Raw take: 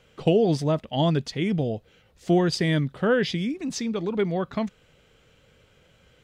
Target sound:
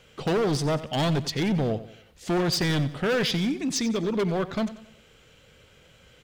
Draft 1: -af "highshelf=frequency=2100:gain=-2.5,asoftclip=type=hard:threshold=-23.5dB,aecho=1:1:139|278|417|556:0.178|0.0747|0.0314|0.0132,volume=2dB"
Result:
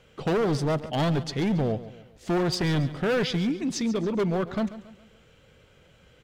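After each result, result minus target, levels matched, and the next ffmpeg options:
echo 48 ms late; 4,000 Hz band −3.5 dB
-af "highshelf=frequency=2100:gain=-2.5,asoftclip=type=hard:threshold=-23.5dB,aecho=1:1:91|182|273|364:0.178|0.0747|0.0314|0.0132,volume=2dB"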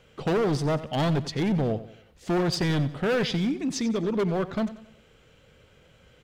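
4,000 Hz band −3.5 dB
-af "highshelf=frequency=2100:gain=4.5,asoftclip=type=hard:threshold=-23.5dB,aecho=1:1:91|182|273|364:0.178|0.0747|0.0314|0.0132,volume=2dB"

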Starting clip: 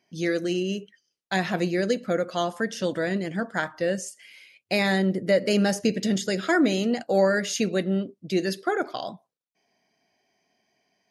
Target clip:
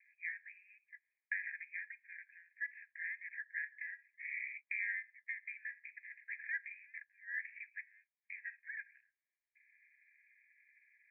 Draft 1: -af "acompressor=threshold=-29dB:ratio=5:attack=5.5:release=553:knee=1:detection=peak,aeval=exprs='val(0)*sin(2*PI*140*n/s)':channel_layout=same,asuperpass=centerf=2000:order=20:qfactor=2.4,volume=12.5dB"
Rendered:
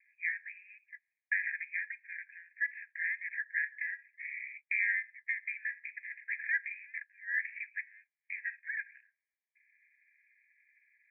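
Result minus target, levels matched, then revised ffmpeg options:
downward compressor: peak gain reduction −8 dB
-af "acompressor=threshold=-39dB:ratio=5:attack=5.5:release=553:knee=1:detection=peak,aeval=exprs='val(0)*sin(2*PI*140*n/s)':channel_layout=same,asuperpass=centerf=2000:order=20:qfactor=2.4,volume=12.5dB"

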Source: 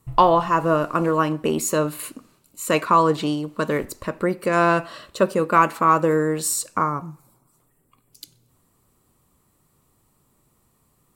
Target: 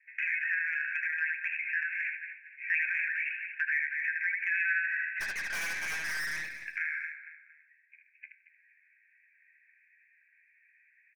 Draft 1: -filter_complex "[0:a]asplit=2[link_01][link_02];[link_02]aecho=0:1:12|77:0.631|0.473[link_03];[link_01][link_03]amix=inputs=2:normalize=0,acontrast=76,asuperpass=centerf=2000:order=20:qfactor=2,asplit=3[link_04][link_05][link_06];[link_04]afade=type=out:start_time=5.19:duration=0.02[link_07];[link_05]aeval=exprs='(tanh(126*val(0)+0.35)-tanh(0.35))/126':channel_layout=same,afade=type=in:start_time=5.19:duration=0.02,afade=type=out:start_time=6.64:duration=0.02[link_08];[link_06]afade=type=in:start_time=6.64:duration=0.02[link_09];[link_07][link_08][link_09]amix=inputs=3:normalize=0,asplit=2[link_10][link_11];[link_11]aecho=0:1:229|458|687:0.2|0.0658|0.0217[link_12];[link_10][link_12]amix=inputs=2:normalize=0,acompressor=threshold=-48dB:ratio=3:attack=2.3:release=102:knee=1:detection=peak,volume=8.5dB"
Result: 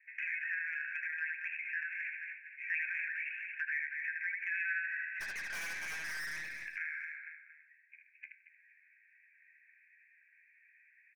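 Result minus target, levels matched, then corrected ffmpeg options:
downward compressor: peak gain reduction +6.5 dB
-filter_complex "[0:a]asplit=2[link_01][link_02];[link_02]aecho=0:1:12|77:0.631|0.473[link_03];[link_01][link_03]amix=inputs=2:normalize=0,acontrast=76,asuperpass=centerf=2000:order=20:qfactor=2,asplit=3[link_04][link_05][link_06];[link_04]afade=type=out:start_time=5.19:duration=0.02[link_07];[link_05]aeval=exprs='(tanh(126*val(0)+0.35)-tanh(0.35))/126':channel_layout=same,afade=type=in:start_time=5.19:duration=0.02,afade=type=out:start_time=6.64:duration=0.02[link_08];[link_06]afade=type=in:start_time=6.64:duration=0.02[link_09];[link_07][link_08][link_09]amix=inputs=3:normalize=0,asplit=2[link_10][link_11];[link_11]aecho=0:1:229|458|687:0.2|0.0658|0.0217[link_12];[link_10][link_12]amix=inputs=2:normalize=0,acompressor=threshold=-38.5dB:ratio=3:attack=2.3:release=102:knee=1:detection=peak,volume=8.5dB"

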